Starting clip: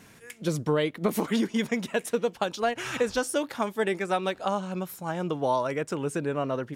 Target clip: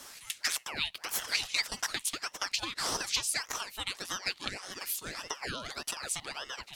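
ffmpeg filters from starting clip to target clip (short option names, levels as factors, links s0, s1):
-af "highpass=910,acompressor=threshold=0.0158:ratio=5,highshelf=f=2500:t=q:w=3:g=9,aeval=exprs='val(0)*sin(2*PI*1400*n/s+1400*0.75/1.7*sin(2*PI*1.7*n/s))':c=same,volume=1.33"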